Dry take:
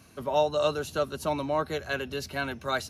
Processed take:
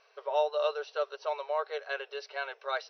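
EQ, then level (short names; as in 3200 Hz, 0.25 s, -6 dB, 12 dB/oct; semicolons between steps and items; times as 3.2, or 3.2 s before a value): brick-wall FIR band-pass 400–6100 Hz; air absorption 110 m; -3.0 dB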